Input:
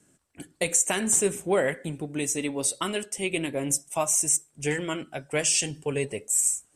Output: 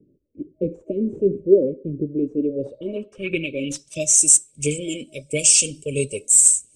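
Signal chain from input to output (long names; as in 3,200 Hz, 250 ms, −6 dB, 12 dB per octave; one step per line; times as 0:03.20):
brick-wall band-stop 630–2,200 Hz
phase shifter 1.5 Hz, delay 4.4 ms, feedback 41%
low-pass filter sweep 380 Hz → 8,400 Hz, 0:02.37–0:04.23
level +2.5 dB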